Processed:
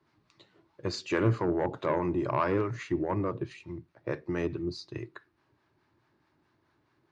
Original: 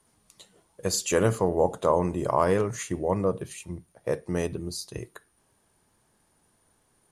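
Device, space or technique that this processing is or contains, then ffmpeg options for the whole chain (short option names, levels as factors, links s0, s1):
guitar amplifier with harmonic tremolo: -filter_complex "[0:a]acrossover=split=680[s0][s1];[s0]aeval=exprs='val(0)*(1-0.5/2+0.5/2*cos(2*PI*4.7*n/s))':c=same[s2];[s1]aeval=exprs='val(0)*(1-0.5/2-0.5/2*cos(2*PI*4.7*n/s))':c=same[s3];[s2][s3]amix=inputs=2:normalize=0,asoftclip=type=tanh:threshold=0.126,highpass=92,equalizer=f=120:t=q:w=4:g=3,equalizer=f=200:t=q:w=4:g=-9,equalizer=f=330:t=q:w=4:g=7,equalizer=f=480:t=q:w=4:g=-9,equalizer=f=730:t=q:w=4:g=-6,equalizer=f=3200:t=q:w=4:g=-7,lowpass=f=4100:w=0.5412,lowpass=f=4100:w=1.3066,volume=1.33"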